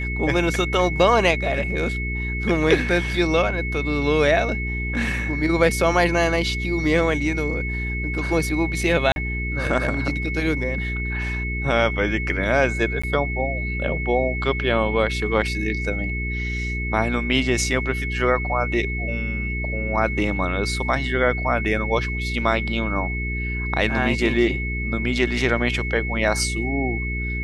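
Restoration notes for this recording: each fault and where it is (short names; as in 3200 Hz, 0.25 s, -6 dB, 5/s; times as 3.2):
hum 60 Hz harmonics 7 -27 dBFS
tone 2200 Hz -28 dBFS
9.12–9.16 gap 41 ms
13.02–13.04 gap 15 ms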